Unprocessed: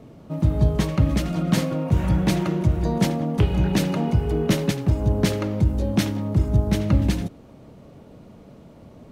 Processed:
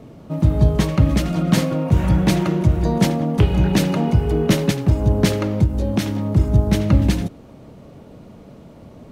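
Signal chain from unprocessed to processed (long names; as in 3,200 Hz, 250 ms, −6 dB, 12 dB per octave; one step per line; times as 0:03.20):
0:05.64–0:06.25: downward compressor, threshold −19 dBFS, peak gain reduction 5.5 dB
level +4 dB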